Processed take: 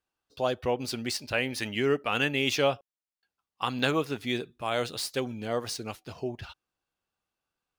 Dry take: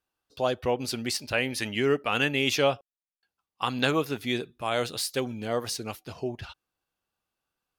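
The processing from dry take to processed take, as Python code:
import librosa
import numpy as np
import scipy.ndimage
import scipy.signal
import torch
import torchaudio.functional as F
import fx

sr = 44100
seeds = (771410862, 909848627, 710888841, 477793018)

y = scipy.ndimage.median_filter(x, 3, mode='constant')
y = y * librosa.db_to_amplitude(-1.5)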